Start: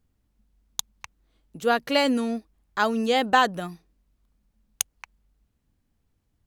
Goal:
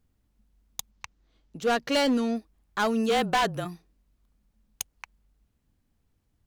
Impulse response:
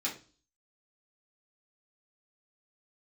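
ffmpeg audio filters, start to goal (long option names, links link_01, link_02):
-filter_complex "[0:a]asettb=1/sr,asplit=3[link_01][link_02][link_03];[link_01]atrim=end=0.914[link_04];[link_02]atrim=start=0.91:end=2.36,asetpts=PTS-STARTPTS,afade=type=in:duration=0.004:curve=qsin,afade=type=out:start_time=1.446:duration=0.004:curve=qsin,highshelf=frequency=7500:width_type=q:width=1.5:gain=-7[link_05];[link_03]atrim=start=2.356[link_06];[link_04][link_05]acrossfade=duration=0.004:curve1=hsin:curve2=qsin[link_07];[link_07][link_06]acrossfade=duration=0.004:curve1=qsin:curve2=hsin,asplit=3[link_08][link_09][link_10];[link_08]afade=type=out:start_time=3.09:duration=0.02[link_11];[link_09]afreqshift=-29,afade=type=in:start_time=3.09:duration=0.02,afade=type=out:start_time=3.64:duration=0.02[link_12];[link_10]afade=type=in:start_time=3.64:duration=0.02[link_13];[link_11][link_12][link_13]amix=inputs=3:normalize=0,asoftclip=type=hard:threshold=-19.5dB"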